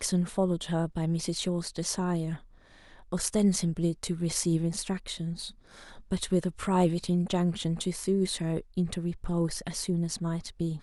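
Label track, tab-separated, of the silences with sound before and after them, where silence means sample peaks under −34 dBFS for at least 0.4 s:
2.360000	3.120000	silence
5.480000	6.110000	silence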